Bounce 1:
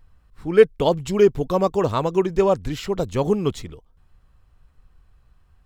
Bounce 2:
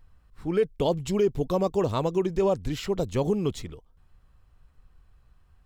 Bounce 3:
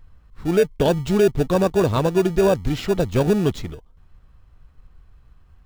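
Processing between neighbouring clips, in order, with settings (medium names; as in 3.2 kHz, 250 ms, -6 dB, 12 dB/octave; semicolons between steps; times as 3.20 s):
dynamic bell 1.4 kHz, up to -6 dB, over -36 dBFS, Q 1; peak limiter -12 dBFS, peak gain reduction 9.5 dB; trim -2.5 dB
median filter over 5 samples; in parallel at -9.5 dB: sample-and-hold 42×; on the sum: trim +5.5 dB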